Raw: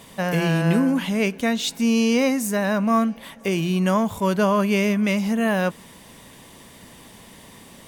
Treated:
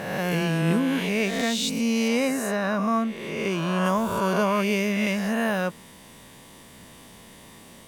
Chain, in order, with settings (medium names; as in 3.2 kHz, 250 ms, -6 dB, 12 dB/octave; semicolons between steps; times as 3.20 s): reverse spectral sustain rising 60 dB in 1.45 s; 2.08–3.85 s: treble shelf 10 kHz -11.5 dB; trim -5 dB